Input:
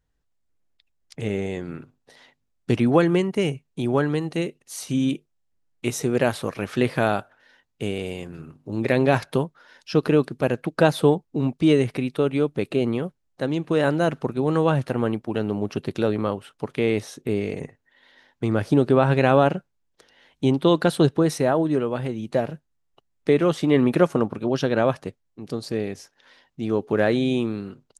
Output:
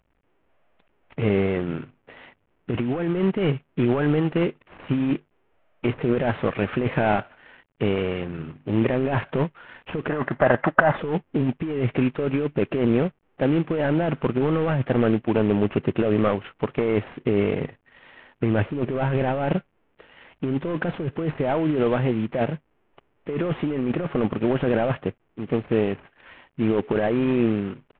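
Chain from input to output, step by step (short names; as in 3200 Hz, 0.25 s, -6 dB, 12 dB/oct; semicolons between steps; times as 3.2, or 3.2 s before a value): CVSD 16 kbps; negative-ratio compressor -25 dBFS, ratio -1; spectral gain 10.09–10.97, 540–2100 Hz +11 dB; gain +3.5 dB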